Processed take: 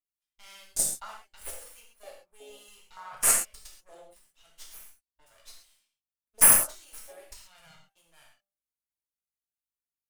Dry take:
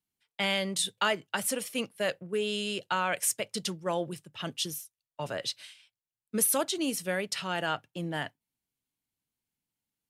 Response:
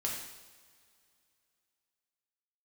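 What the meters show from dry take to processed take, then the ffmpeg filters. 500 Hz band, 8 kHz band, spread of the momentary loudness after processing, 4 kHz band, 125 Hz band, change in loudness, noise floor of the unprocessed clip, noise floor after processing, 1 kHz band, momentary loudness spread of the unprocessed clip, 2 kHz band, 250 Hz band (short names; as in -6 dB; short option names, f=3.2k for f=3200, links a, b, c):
-13.0 dB, +7.5 dB, 25 LU, -11.0 dB, -11.5 dB, +9.5 dB, under -85 dBFS, under -85 dBFS, -6.5 dB, 11 LU, -5.5 dB, -15.0 dB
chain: -filter_complex "[0:a]bandreject=f=197.6:t=h:w=4,bandreject=f=395.2:t=h:w=4,bandreject=f=592.8:t=h:w=4,bandreject=f=790.4:t=h:w=4,acrossover=split=390|7100[a][b][c];[a]alimiter=level_in=9.5dB:limit=-24dB:level=0:latency=1,volume=-9.5dB[d];[d][b][c]amix=inputs=3:normalize=0,aeval=exprs='val(0)+0.000891*(sin(2*PI*50*n/s)+sin(2*PI*2*50*n/s)/2+sin(2*PI*3*50*n/s)/3+sin(2*PI*4*50*n/s)/4+sin(2*PI*5*50*n/s)/5)':c=same,crystalizer=i=0.5:c=0,bass=f=250:g=-15,treble=f=4k:g=13,aeval=exprs='max(val(0),0)':c=same,afwtdn=0.0447,lowshelf=f=450:g=-10.5[e];[1:a]atrim=start_sample=2205,atrim=end_sample=6174[f];[e][f]afir=irnorm=-1:irlink=0,asplit=2[g][h];[h]aeval=exprs='sgn(val(0))*max(abs(val(0))-0.0376,0)':c=same,volume=-7.5dB[i];[g][i]amix=inputs=2:normalize=0,volume=-6dB"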